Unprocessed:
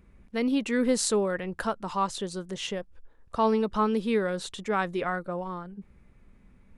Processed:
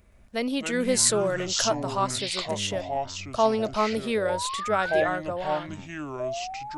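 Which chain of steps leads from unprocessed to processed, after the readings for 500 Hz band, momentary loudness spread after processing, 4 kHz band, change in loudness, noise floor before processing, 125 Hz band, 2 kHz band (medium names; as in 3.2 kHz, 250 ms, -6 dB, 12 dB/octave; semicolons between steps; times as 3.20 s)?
+3.0 dB, 11 LU, +8.0 dB, +2.5 dB, -58 dBFS, +3.0 dB, +4.0 dB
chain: painted sound rise, 4.29–5.08 s, 870–1800 Hz -33 dBFS; treble shelf 3 kHz +11 dB; ever faster or slower copies 124 ms, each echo -6 st, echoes 2, each echo -6 dB; graphic EQ with 31 bands 100 Hz +6 dB, 160 Hz -11 dB, 315 Hz -4 dB, 630 Hz +11 dB; trim -1.5 dB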